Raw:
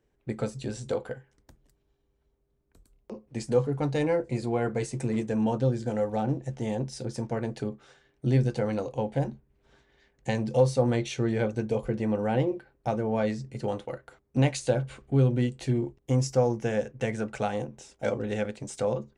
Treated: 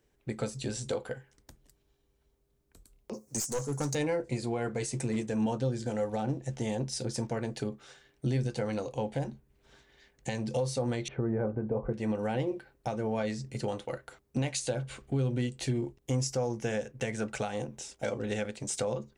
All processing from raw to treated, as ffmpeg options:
-filter_complex "[0:a]asettb=1/sr,asplit=3[s0][s1][s2];[s0]atrim=end=3.134[s3];[s1]atrim=start=3.13:end=3.95,asetpts=PTS-STARTPTS,afade=t=in:d=0.004:c=qsin,afade=t=out:st=0.816:d=0.004:c=qsin,highpass=84,highshelf=f=4500:t=q:w=3:g=13.5,aeval=exprs='clip(val(0),-1,0.0422)':c=same[s4];[s2]atrim=start=3.946[s5];[s3][s4]acrossfade=d=0.004:c1=hsin:c2=qsin[s6];[s6][s5]acrossfade=d=0.004:c1=qsin:c2=hsin,asettb=1/sr,asplit=3[s7][s8][s9];[s7]atrim=end=11.084[s10];[s8]atrim=start=11.08:end=11.93,asetpts=PTS-STARTPTS,afade=t=in:d=0.004:c=qsin,afade=t=out:st=0.846:d=0.004:c=qsin,acontrast=82,lowpass=f=1300:w=0.5412,lowpass=f=1300:w=1.3066[s11];[s9]atrim=start=11.926[s12];[s10][s11]acrossfade=d=0.004:c1=hsin:c2=qsin[s13];[s13][s12]acrossfade=d=0.004:c1=qsin:c2=hsin,highshelf=f=2500:g=8,alimiter=limit=0.0794:level=0:latency=1:release=286"

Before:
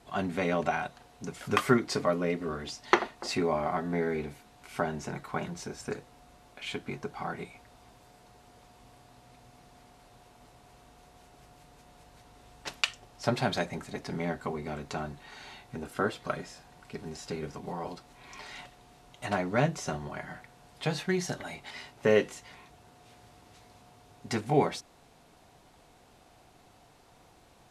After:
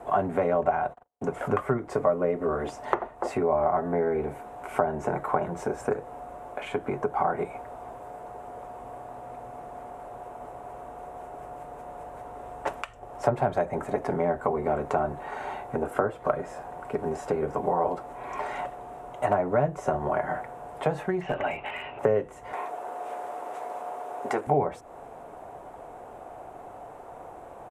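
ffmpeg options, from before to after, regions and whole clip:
-filter_complex "[0:a]asettb=1/sr,asplit=3[s0][s1][s2];[s0]atrim=end=0.554[s3];[s1]atrim=start=0.55:end=1.78,asetpts=PTS-STARTPTS,afade=t=in:d=0.004:c=qsin,afade=t=out:st=1.226:d=0.004:c=qsin,highshelf=f=5500:g=-5.5,asoftclip=type=hard:threshold=0.282,agate=range=0.00355:threshold=0.00251:ratio=16:release=100:detection=peak[s4];[s2]atrim=start=1.776[s5];[s3][s4]acrossfade=d=0.004:c1=hsin:c2=qsin[s6];[s6][s5]acrossfade=d=0.004:c1=qsin:c2=hsin,asettb=1/sr,asplit=3[s7][s8][s9];[s7]atrim=end=21.214[s10];[s8]atrim=start=21.21:end=21.99,asetpts=PTS-STARTPTS,afade=t=in:d=0.004:c=qsin,afade=t=out:st=0.776:d=0.004:c=qsin,lowpass=f=2700:t=q:w=10,asoftclip=type=hard:threshold=0.0376[s11];[s9]atrim=start=21.986[s12];[s10][s11]acrossfade=d=0.004:c1=hsin:c2=qsin[s13];[s13][s12]acrossfade=d=0.004:c1=qsin:c2=hsin,asettb=1/sr,asplit=3[s14][s15][s16];[s14]atrim=end=22.534[s17];[s15]atrim=start=22.53:end=24.47,asetpts=PTS-STARTPTS,afade=t=in:d=0.004:c=qsin,afade=t=out:st=1.936:d=0.004:c=qsin,highpass=400,acontrast=48[s18];[s16]atrim=start=24.466[s19];[s17][s18]acrossfade=d=0.004:c1=hsin:c2=qsin[s20];[s20][s19]acrossfade=d=0.004:c1=qsin:c2=hsin,acrossover=split=120[s21][s22];[s22]acompressor=threshold=0.0126:ratio=10[s23];[s21][s23]amix=inputs=2:normalize=0,firequalizer=gain_entry='entry(190,0);entry(410,10);entry(600,14);entry(1900,0);entry(4400,-18);entry(7700,-5)':delay=0.05:min_phase=1,volume=2.11"

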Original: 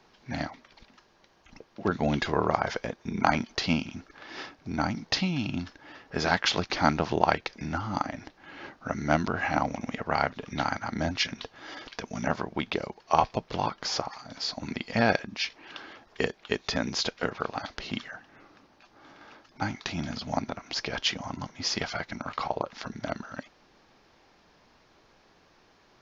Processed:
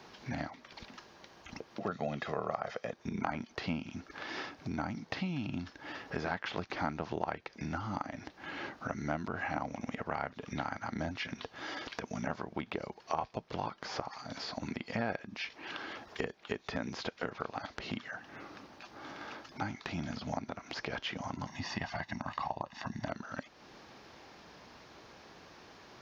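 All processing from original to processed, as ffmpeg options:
-filter_complex "[0:a]asettb=1/sr,asplit=3[s0][s1][s2];[s0]atrim=end=1.804[s3];[s1]atrim=start=1.8:end=2.93,asetpts=PTS-STARTPTS,afade=t=in:d=0.004:c=qsin,afade=t=out:st=1.126:d=0.004:c=qsin,highpass=150,aecho=1:1:1.6:0.55,atrim=end_sample=49833[s4];[s2]atrim=start=2.926[s5];[s3][s4]acrossfade=d=0.004:c1=hsin:c2=qsin[s6];[s6][s5]acrossfade=d=0.004:c1=qsin:c2=hsin,asettb=1/sr,asplit=3[s7][s8][s9];[s7]atrim=end=21.474[s10];[s8]atrim=start=21.47:end=23.08,asetpts=PTS-STARTPTS,afade=t=in:d=0.004:c=qsin,afade=t=out:st=1.606:d=0.004:c=qsin,aecho=1:1:1.1:0.72,atrim=end_sample=71001,acompressor=mode=upward:threshold=0.01:ratio=2.5:attack=3.2:release=140:knee=2.83:detection=peak[s11];[s9]atrim=start=23.076[s12];[s10][s11]acrossfade=d=0.004:c1=hsin:c2=qsin[s13];[s13][s12]acrossfade=d=0.004:c1=qsin:c2=hsin,acrossover=split=2600[s14][s15];[s15]acompressor=threshold=0.00562:ratio=4:attack=1:release=60[s16];[s14][s16]amix=inputs=2:normalize=0,highpass=58,acompressor=threshold=0.00447:ratio=2.5,volume=2.11"

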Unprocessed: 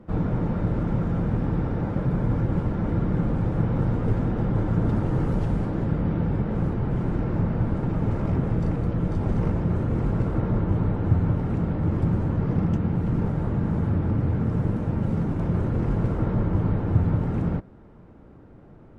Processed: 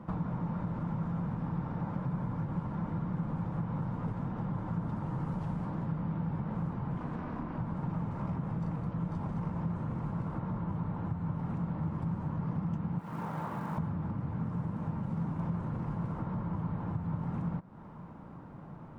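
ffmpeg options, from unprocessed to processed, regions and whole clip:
-filter_complex "[0:a]asettb=1/sr,asplit=3[s0][s1][s2];[s0]atrim=end=6.974[s3];[s1]atrim=start=6.97:end=7.58,asetpts=PTS-STARTPTS,afade=t=in:d=0.004:c=qsin,afade=t=out:st=0.606:d=0.004:c=qsin,equalizer=f=2800:t=o:w=3:g=4.5,aeval=exprs='val(0)*sin(2*PI*130*n/s)':c=same[s4];[s2]atrim=start=7.576[s5];[s3][s4]acrossfade=d=0.004:c1=hsin:c2=qsin[s6];[s6][s5]acrossfade=d=0.004:c1=qsin:c2=hsin,asettb=1/sr,asplit=3[s7][s8][s9];[s7]atrim=end=12.994[s10];[s8]atrim=start=12.99:end=13.78,asetpts=PTS-STARTPTS,afade=t=in:d=0.004:c=qsin,afade=t=out:st=0.786:d=0.004:c=qsin,highpass=f=710:p=1,acrusher=bits=7:mode=log:mix=0:aa=0.000001[s11];[s9]atrim=start=13.776[s12];[s10][s11]acrossfade=d=0.004:c1=hsin:c2=qsin[s13];[s13][s12]acrossfade=d=0.004:c1=qsin:c2=hsin,lowshelf=f=90:g=-9.5,acompressor=threshold=0.0141:ratio=6,equalizer=f=160:t=o:w=0.67:g=9,equalizer=f=400:t=o:w=0.67:g=-6,equalizer=f=1000:t=o:w=0.67:g=10"

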